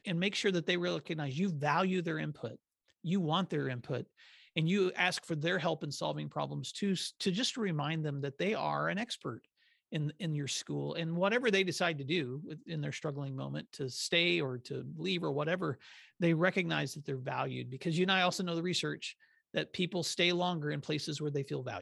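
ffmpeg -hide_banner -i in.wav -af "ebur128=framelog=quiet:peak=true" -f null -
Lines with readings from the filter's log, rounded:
Integrated loudness:
  I:         -34.1 LUFS
  Threshold: -44.3 LUFS
Loudness range:
  LRA:         2.4 LU
  Threshold: -54.4 LUFS
  LRA low:   -35.5 LUFS
  LRA high:  -33.1 LUFS
True peak:
  Peak:      -14.4 dBFS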